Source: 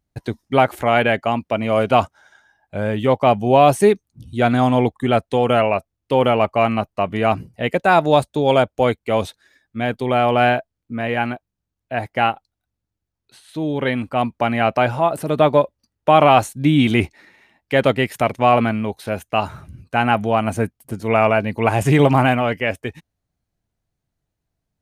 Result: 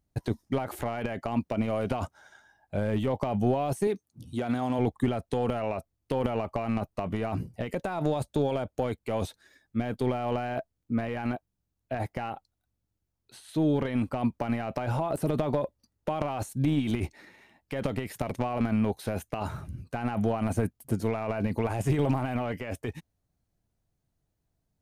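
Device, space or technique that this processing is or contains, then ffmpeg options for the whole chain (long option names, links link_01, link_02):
de-esser from a sidechain: -filter_complex "[0:a]asplit=2[link_01][link_02];[link_02]highpass=frequency=4800:poles=1,apad=whole_len=1094402[link_03];[link_01][link_03]sidechaincompress=threshold=-39dB:ratio=12:attack=0.82:release=24,asettb=1/sr,asplit=3[link_04][link_05][link_06];[link_04]atrim=end=3.874[link_07];[link_05]atrim=start=3.87:end=4.79,asetpts=PTS-STARTPTS,afade=type=in:duration=0.004:curve=qsin,afade=type=out:start_time=0.916:duration=0.004:curve=qsin,highpass=frequency=220:poles=1[link_08];[link_06]atrim=start=4.786[link_09];[link_07][link_08]acrossfade=duration=0.004:curve1=hsin:curve2=qsin[link_10];[link_10][link_09]acrossfade=duration=0.004:curve1=qsin:curve2=hsin,equalizer=frequency=2300:width=0.52:gain=-4.5"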